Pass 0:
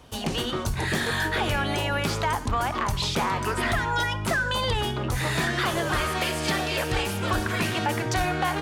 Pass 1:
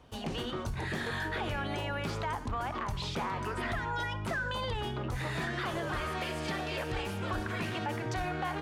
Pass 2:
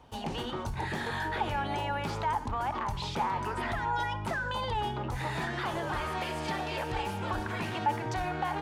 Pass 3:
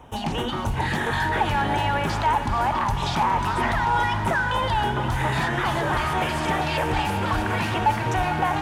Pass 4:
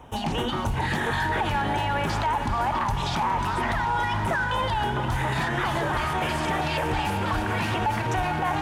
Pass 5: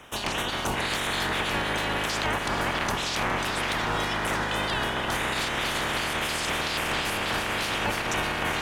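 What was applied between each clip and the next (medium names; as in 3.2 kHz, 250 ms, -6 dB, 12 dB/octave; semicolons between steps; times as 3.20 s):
treble shelf 4.8 kHz -10.5 dB; peak limiter -20 dBFS, peak gain reduction 3 dB; trim -6.5 dB
peaking EQ 870 Hz +10.5 dB 0.27 oct
LFO notch square 3.1 Hz 460–4500 Hz; in parallel at -4 dB: hard clipper -28.5 dBFS, distortion -15 dB; on the sum: echo that smears into a reverb 460 ms, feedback 64%, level -9.5 dB; trim +5.5 dB
peak limiter -17.5 dBFS, peak gain reduction 6.5 dB
spectral peaks clipped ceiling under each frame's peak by 22 dB; trim -2 dB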